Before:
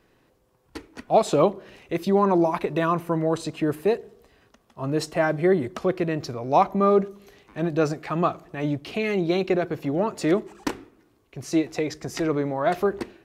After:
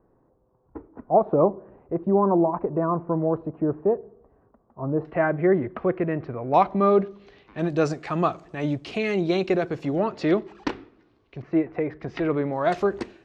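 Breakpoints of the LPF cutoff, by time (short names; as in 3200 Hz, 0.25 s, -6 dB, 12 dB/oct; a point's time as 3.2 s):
LPF 24 dB/oct
1100 Hz
from 5.05 s 2200 Hz
from 6.54 s 4400 Hz
from 7.59 s 8100 Hz
from 9.98 s 4700 Hz
from 11.42 s 2000 Hz
from 12 s 3300 Hz
from 12.53 s 7800 Hz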